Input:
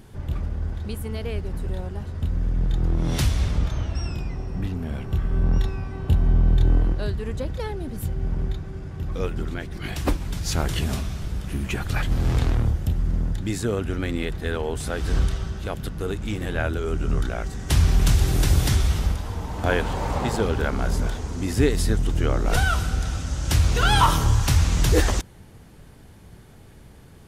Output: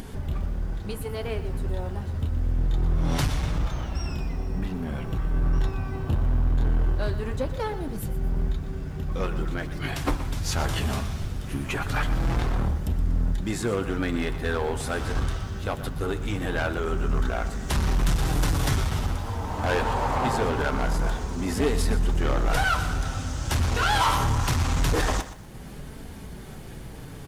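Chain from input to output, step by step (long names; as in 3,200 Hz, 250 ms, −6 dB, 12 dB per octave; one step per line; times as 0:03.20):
dynamic equaliser 1,000 Hz, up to +8 dB, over −42 dBFS, Q 0.83
in parallel at +3 dB: upward compression, threshold −20 dBFS
on the sum: hard clipping −10 dBFS, distortion −9 dB
flanger 0.23 Hz, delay 4.2 ms, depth 5.3 ms, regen −48%
on a send at −17 dB: convolution reverb RT60 0.35 s, pre-delay 4 ms
on the sum: downsampling to 32,000 Hz
feedback echo at a low word length 121 ms, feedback 35%, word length 7 bits, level −13 dB
level −6 dB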